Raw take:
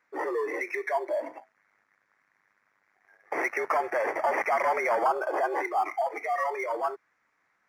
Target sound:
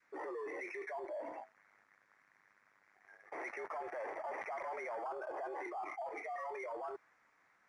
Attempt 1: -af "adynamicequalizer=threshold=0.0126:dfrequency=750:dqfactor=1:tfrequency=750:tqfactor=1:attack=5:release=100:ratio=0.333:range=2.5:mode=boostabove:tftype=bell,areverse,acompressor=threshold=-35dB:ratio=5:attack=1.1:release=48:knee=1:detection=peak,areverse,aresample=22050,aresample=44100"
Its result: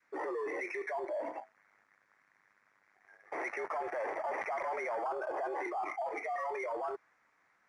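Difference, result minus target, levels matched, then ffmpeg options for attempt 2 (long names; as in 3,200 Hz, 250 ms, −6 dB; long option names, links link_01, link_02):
downward compressor: peak gain reduction −6 dB
-af "adynamicequalizer=threshold=0.0126:dfrequency=750:dqfactor=1:tfrequency=750:tqfactor=1:attack=5:release=100:ratio=0.333:range=2.5:mode=boostabove:tftype=bell,areverse,acompressor=threshold=-42.5dB:ratio=5:attack=1.1:release=48:knee=1:detection=peak,areverse,aresample=22050,aresample=44100"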